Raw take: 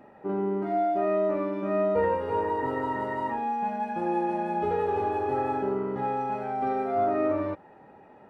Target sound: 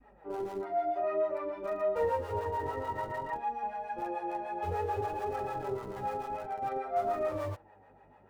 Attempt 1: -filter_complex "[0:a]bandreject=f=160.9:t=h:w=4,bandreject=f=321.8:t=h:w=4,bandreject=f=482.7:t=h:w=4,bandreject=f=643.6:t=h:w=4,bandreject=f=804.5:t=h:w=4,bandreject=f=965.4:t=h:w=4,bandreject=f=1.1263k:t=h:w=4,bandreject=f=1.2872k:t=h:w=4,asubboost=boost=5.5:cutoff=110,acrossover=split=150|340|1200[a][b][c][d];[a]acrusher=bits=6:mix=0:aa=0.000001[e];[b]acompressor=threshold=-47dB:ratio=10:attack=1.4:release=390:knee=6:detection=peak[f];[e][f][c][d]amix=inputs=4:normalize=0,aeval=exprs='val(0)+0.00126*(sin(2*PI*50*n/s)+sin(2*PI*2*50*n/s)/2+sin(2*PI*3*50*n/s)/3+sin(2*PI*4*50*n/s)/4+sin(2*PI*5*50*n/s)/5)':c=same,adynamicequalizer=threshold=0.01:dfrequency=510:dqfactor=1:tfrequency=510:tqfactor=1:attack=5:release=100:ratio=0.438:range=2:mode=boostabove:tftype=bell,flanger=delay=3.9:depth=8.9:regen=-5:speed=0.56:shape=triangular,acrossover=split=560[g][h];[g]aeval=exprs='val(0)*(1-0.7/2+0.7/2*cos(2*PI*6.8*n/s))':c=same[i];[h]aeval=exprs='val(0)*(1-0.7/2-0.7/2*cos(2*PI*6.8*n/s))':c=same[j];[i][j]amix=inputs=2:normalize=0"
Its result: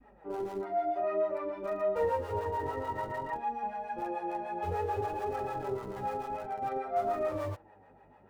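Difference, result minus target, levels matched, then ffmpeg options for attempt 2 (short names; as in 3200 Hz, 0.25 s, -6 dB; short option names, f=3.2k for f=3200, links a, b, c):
compressor: peak gain reduction -11 dB
-filter_complex "[0:a]bandreject=f=160.9:t=h:w=4,bandreject=f=321.8:t=h:w=4,bandreject=f=482.7:t=h:w=4,bandreject=f=643.6:t=h:w=4,bandreject=f=804.5:t=h:w=4,bandreject=f=965.4:t=h:w=4,bandreject=f=1.1263k:t=h:w=4,bandreject=f=1.2872k:t=h:w=4,asubboost=boost=5.5:cutoff=110,acrossover=split=150|340|1200[a][b][c][d];[a]acrusher=bits=6:mix=0:aa=0.000001[e];[b]acompressor=threshold=-59dB:ratio=10:attack=1.4:release=390:knee=6:detection=peak[f];[e][f][c][d]amix=inputs=4:normalize=0,aeval=exprs='val(0)+0.00126*(sin(2*PI*50*n/s)+sin(2*PI*2*50*n/s)/2+sin(2*PI*3*50*n/s)/3+sin(2*PI*4*50*n/s)/4+sin(2*PI*5*50*n/s)/5)':c=same,adynamicequalizer=threshold=0.01:dfrequency=510:dqfactor=1:tfrequency=510:tqfactor=1:attack=5:release=100:ratio=0.438:range=2:mode=boostabove:tftype=bell,flanger=delay=3.9:depth=8.9:regen=-5:speed=0.56:shape=triangular,acrossover=split=560[g][h];[g]aeval=exprs='val(0)*(1-0.7/2+0.7/2*cos(2*PI*6.8*n/s))':c=same[i];[h]aeval=exprs='val(0)*(1-0.7/2-0.7/2*cos(2*PI*6.8*n/s))':c=same[j];[i][j]amix=inputs=2:normalize=0"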